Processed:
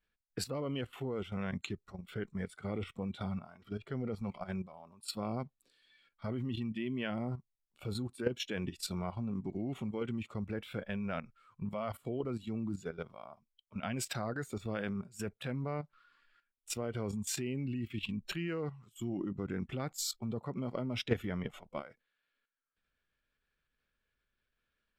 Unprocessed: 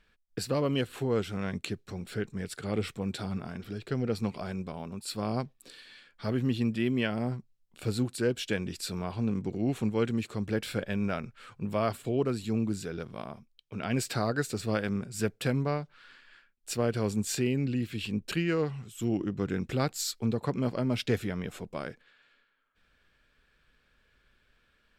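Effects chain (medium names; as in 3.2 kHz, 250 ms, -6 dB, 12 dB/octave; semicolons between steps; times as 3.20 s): level held to a coarse grid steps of 12 dB; spectral noise reduction 12 dB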